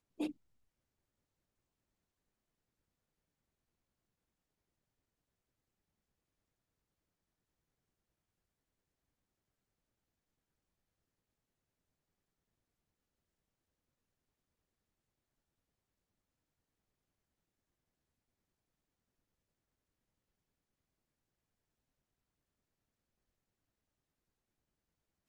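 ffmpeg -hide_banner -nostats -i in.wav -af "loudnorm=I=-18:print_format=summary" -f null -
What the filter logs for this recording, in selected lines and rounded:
Input Integrated:    -42.7 LUFS
Input True Peak:     -27.5 dBTP
Input LRA:             0.0 LU
Input Threshold:     -53.9 LUFS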